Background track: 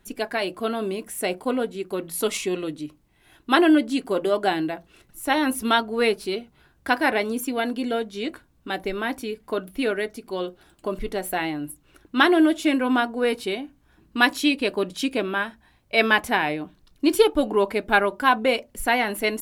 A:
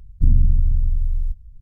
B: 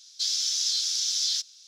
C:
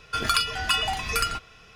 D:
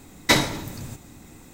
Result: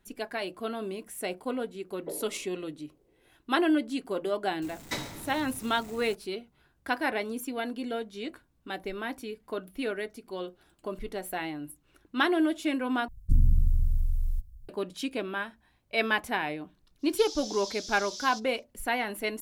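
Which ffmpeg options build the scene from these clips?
-filter_complex "[4:a]asplit=2[a][b];[0:a]volume=-8dB[c];[a]asuperpass=centerf=450:order=4:qfactor=2.2[d];[b]aeval=exprs='val(0)+0.5*0.0447*sgn(val(0))':c=same[e];[1:a]aemphasis=mode=production:type=75kf[f];[c]asplit=2[g][h];[g]atrim=end=13.084[i];[f]atrim=end=1.61,asetpts=PTS-STARTPTS,volume=-7dB[j];[h]atrim=start=14.686[k];[d]atrim=end=1.53,asetpts=PTS-STARTPTS,volume=-9.5dB,afade=t=in:d=0.004:c=hsin,afade=t=out:st=1.526:d=0.004:c=hsin,adelay=1770[l];[e]atrim=end=1.53,asetpts=PTS-STARTPTS,volume=-17dB,afade=t=in:d=0.004:c=hsin,afade=t=out:st=1.526:d=0.004:c=hsin,adelay=4620[m];[2:a]atrim=end=1.67,asetpts=PTS-STARTPTS,volume=-14dB,afade=t=in:d=0.05,afade=t=out:st=1.62:d=0.05,adelay=16980[n];[i][j]acrossfade=d=0.004:c1=hsin:c2=hsin[o];[o][k]acrossfade=d=0.004:c1=hsin:c2=hsin[p];[p][l][m][n]amix=inputs=4:normalize=0"

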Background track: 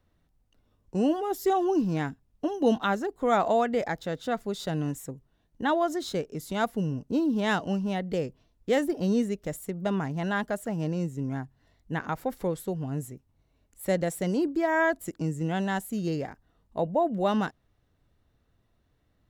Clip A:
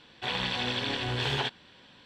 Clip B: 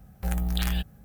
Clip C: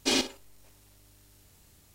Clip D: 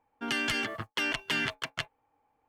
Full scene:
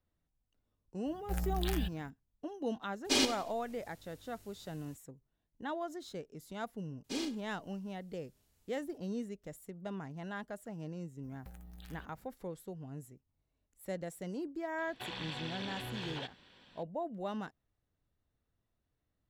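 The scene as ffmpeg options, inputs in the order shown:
-filter_complex "[2:a]asplit=2[a][b];[3:a]asplit=2[c][d];[0:a]volume=-13.5dB[e];[c]aecho=1:1:89|178|267:0.141|0.0565|0.0226[f];[d]asplit=2[g][h];[h]adelay=35,volume=-5.5dB[i];[g][i]amix=inputs=2:normalize=0[j];[b]acompressor=threshold=-37dB:ratio=12:attack=21:release=112:knee=1:detection=peak[k];[1:a]acompressor=threshold=-32dB:ratio=6:attack=3.2:release=140:knee=1:detection=peak[l];[a]atrim=end=1.04,asetpts=PTS-STARTPTS,volume=-8dB,afade=t=in:d=0.004:c=hsin,afade=t=out:st=1.036:d=0.004:c=hsin,adelay=1060[m];[f]atrim=end=1.94,asetpts=PTS-STARTPTS,volume=-3dB,afade=t=in:d=0.02,afade=t=out:st=1.92:d=0.02,adelay=3040[n];[j]atrim=end=1.94,asetpts=PTS-STARTPTS,volume=-16.5dB,afade=t=in:d=0.004:c=hsin,afade=t=out:st=1.936:d=0.004:c=hsin,adelay=7040[o];[k]atrim=end=1.04,asetpts=PTS-STARTPTS,volume=-13dB,afade=t=in:d=0.004:c=hsin,afade=t=out:st=1.036:d=0.004:c=hsin,adelay=11230[p];[l]atrim=end=2.05,asetpts=PTS-STARTPTS,volume=-6.5dB,afade=t=in:d=0.004:c=hsin,afade=t=out:st=2.046:d=0.004:c=hsin,adelay=14780[q];[e][m][n][o][p][q]amix=inputs=6:normalize=0"

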